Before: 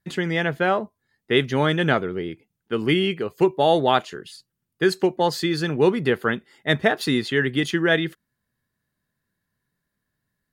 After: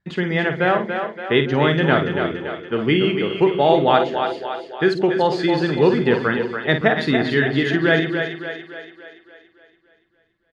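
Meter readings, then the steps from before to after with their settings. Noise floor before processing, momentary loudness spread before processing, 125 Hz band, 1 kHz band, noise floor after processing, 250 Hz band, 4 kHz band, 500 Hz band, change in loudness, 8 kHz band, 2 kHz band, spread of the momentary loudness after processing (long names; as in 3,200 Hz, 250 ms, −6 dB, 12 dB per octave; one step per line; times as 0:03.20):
−81 dBFS, 9 LU, +3.5 dB, +3.5 dB, −63 dBFS, +3.5 dB, +1.0 dB, +3.5 dB, +3.0 dB, can't be measured, +3.5 dB, 10 LU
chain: low-pass filter 3,500 Hz 12 dB per octave
double-tracking delay 50 ms −8.5 dB
on a send: echo with a time of its own for lows and highs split 350 Hz, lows 131 ms, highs 285 ms, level −6.5 dB
on the sum: level +2 dB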